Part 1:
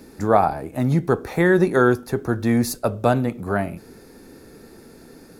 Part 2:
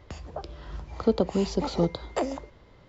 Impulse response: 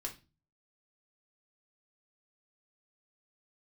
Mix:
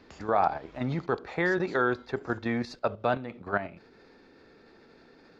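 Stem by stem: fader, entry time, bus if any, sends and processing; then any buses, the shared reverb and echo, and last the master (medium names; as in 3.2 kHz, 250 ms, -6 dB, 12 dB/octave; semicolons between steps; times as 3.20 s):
0.0 dB, 0.00 s, no send, low-pass 4.2 kHz 24 dB/octave; level held to a coarse grid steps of 10 dB
-9.5 dB, 0.00 s, no send, compressor with a negative ratio -33 dBFS, ratio -1; auto duck -10 dB, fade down 1.90 s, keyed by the first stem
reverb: none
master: bass shelf 410 Hz -11.5 dB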